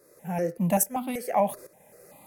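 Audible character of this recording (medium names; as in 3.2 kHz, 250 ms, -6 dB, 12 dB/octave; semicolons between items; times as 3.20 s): tremolo saw up 1.2 Hz, depth 80%; notches that jump at a steady rate 5.2 Hz 820–1700 Hz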